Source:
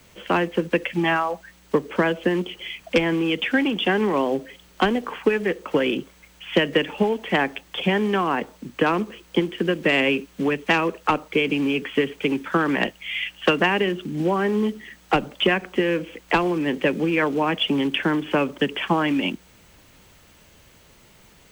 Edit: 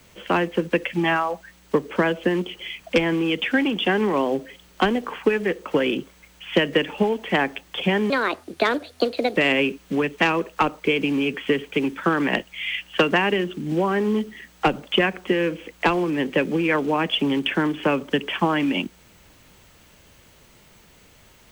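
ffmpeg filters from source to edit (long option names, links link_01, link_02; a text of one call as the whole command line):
ffmpeg -i in.wav -filter_complex "[0:a]asplit=3[link_01][link_02][link_03];[link_01]atrim=end=8.104[link_04];[link_02]atrim=start=8.1:end=9.85,asetpts=PTS-STARTPTS,asetrate=60858,aresample=44100[link_05];[link_03]atrim=start=9.846[link_06];[link_04][link_05]acrossfade=duration=0.004:curve1=hsin:curve2=hsin[link_07];[link_07][link_06]acrossfade=duration=0.004:curve1=hsin:curve2=hsin" out.wav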